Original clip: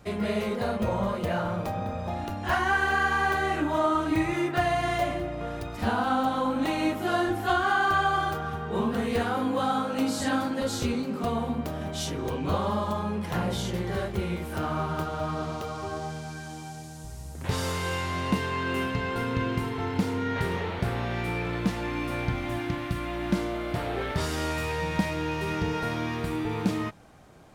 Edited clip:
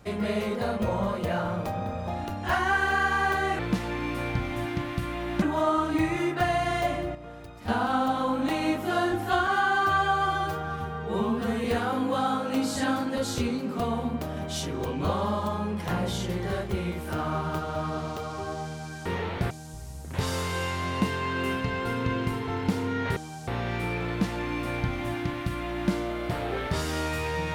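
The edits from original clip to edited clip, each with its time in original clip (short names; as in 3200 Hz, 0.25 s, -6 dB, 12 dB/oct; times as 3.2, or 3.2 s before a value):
5.32–5.85 gain -9 dB
7.64–9.09 stretch 1.5×
16.5–16.81 swap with 20.47–20.92
21.52–23.35 copy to 3.59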